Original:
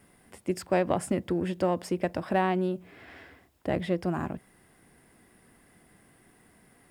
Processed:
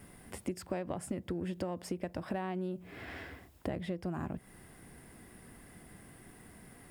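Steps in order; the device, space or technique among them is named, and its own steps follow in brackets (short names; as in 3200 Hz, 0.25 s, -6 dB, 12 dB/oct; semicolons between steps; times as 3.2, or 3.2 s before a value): ASMR close-microphone chain (low shelf 170 Hz +7 dB; compressor 8:1, threshold -37 dBFS, peak gain reduction 17.5 dB; high shelf 9200 Hz +3.5 dB); gain +3 dB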